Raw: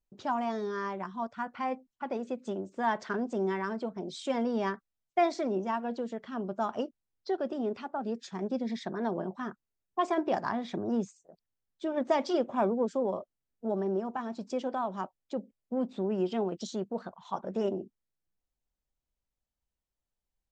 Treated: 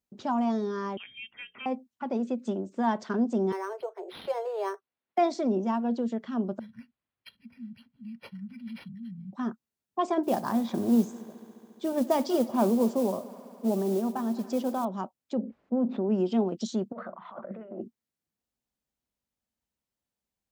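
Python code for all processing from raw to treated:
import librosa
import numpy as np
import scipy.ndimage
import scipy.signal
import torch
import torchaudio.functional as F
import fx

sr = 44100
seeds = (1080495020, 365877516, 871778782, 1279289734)

y = fx.chain(x, sr, fx.freq_invert(carrier_hz=3400),
    fx.air_absorb(metres=440.0),
    fx.hum_notches(base_hz=60, count=8), at=(0.97, 1.66))
y = fx.chain(y, sr, fx.steep_highpass(hz=370.0, slope=96),
    fx.resample_linear(factor=6), at=(3.52, 5.18))
y = fx.chain(y, sr, fx.brickwall_bandstop(low_hz=240.0, high_hz=3800.0),
    fx.comb(ms=2.2, depth=0.73),
    fx.resample_linear(factor=6), at=(6.59, 9.33))
y = fx.chain(y, sr, fx.mod_noise(seeds[0], snr_db=20),
    fx.echo_heads(ms=70, heads='first and third', feedback_pct=73, wet_db=-21), at=(10.23, 14.85))
y = fx.chain(y, sr, fx.lowpass(hz=1500.0, slope=12),
    fx.peak_eq(hz=120.0, db=-10.0, octaves=1.2),
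    fx.env_flatten(amount_pct=50), at=(15.38, 16.09))
y = fx.chain(y, sr, fx.cabinet(low_hz=260.0, low_slope=12, high_hz=2200.0, hz=(270.0, 410.0, 580.0, 880.0, 1300.0, 2000.0), db=(-5, -6, 7, -7, 7, 9)),
    fx.over_compress(threshold_db=-43.0, ratio=-1.0),
    fx.hum_notches(base_hz=60, count=8), at=(16.92, 17.81))
y = fx.dynamic_eq(y, sr, hz=1900.0, q=1.3, threshold_db=-50.0, ratio=4.0, max_db=-7)
y = scipy.signal.sosfilt(scipy.signal.butter(2, 85.0, 'highpass', fs=sr, output='sos'), y)
y = fx.peak_eq(y, sr, hz=230.0, db=7.5, octaves=0.39)
y = y * librosa.db_to_amplitude(2.0)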